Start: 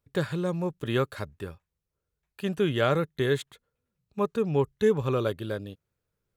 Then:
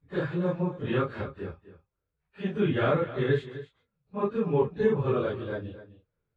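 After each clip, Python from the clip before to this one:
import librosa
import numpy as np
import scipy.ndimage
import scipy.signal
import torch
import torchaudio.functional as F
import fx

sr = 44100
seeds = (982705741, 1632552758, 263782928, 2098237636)

y = fx.phase_scramble(x, sr, seeds[0], window_ms=100)
y = scipy.signal.sosfilt(scipy.signal.butter(2, 2500.0, 'lowpass', fs=sr, output='sos'), y)
y = y + 10.0 ** (-14.5 / 20.0) * np.pad(y, (int(257 * sr / 1000.0), 0))[:len(y)]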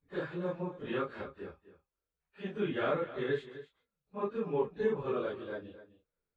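y = fx.peak_eq(x, sr, hz=110.0, db=-13.5, octaves=1.1)
y = F.gain(torch.from_numpy(y), -5.5).numpy()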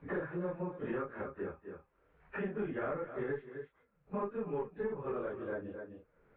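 y = fx.diode_clip(x, sr, knee_db=-24.0)
y = scipy.signal.sosfilt(scipy.signal.butter(4, 2100.0, 'lowpass', fs=sr, output='sos'), y)
y = fx.band_squash(y, sr, depth_pct=100)
y = F.gain(torch.from_numpy(y), -2.5).numpy()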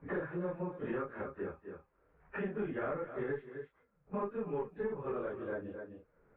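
y = fx.env_lowpass(x, sr, base_hz=1600.0, full_db=-36.5)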